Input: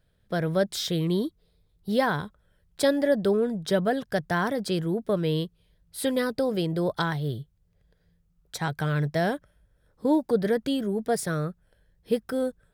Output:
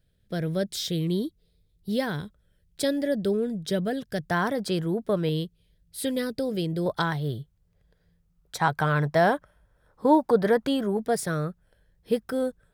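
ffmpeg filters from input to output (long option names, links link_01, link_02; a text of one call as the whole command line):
ffmpeg -i in.wav -af "asetnsamples=nb_out_samples=441:pad=0,asendcmd='4.3 equalizer g 1;5.29 equalizer g -10;6.86 equalizer g 1.5;8.6 equalizer g 10.5;10.97 equalizer g 1',equalizer=frequency=1000:width_type=o:width=1.4:gain=-11" out.wav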